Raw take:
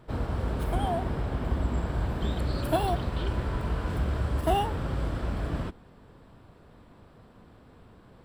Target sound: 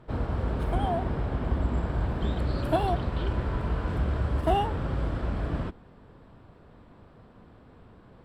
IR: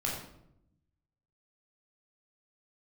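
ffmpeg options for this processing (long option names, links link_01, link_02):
-af "aemphasis=mode=reproduction:type=50kf,volume=1dB"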